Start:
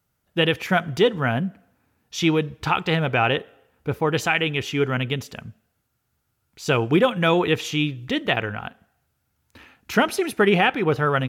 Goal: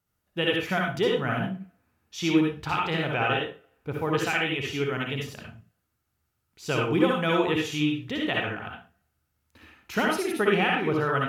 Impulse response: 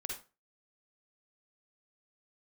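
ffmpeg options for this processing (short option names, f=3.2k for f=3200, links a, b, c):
-filter_complex "[1:a]atrim=start_sample=2205,afade=t=out:st=0.23:d=0.01,atrim=end_sample=10584,asetrate=36603,aresample=44100[a];[0:a][a]afir=irnorm=-1:irlink=0,volume=-5dB"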